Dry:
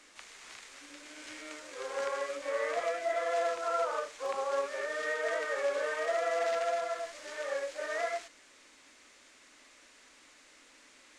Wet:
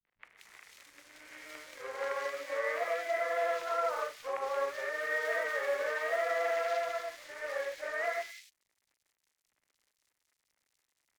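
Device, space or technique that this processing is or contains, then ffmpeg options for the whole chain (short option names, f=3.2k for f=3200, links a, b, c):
pocket radio on a weak battery: -filter_complex "[0:a]highpass=320,lowpass=3.7k,aeval=exprs='sgn(val(0))*max(abs(val(0))-0.00188,0)':c=same,equalizer=f=2k:t=o:w=0.43:g=5.5,asettb=1/sr,asplit=3[a][b][c];[a]atrim=end=2.174[d];[b]atrim=start=2.17:end=3.34,asetpts=PTS-STARTPTS,afade=t=in:d=0.004:c=qsin,afade=t=out:st=1.166:d=0.004:c=qsin,highpass=89[e];[c]atrim=start=3.336[f];[d][e]acrossfade=d=0.004:c1=hsin:c2=qsin[g];[g][f]acrossfade=d=0.004:c1=qsin:c2=hsin,aemphasis=mode=production:type=cd,acrossover=split=200|2700[h][i][j];[i]adelay=40[k];[j]adelay=220[l];[h][k][l]amix=inputs=3:normalize=0"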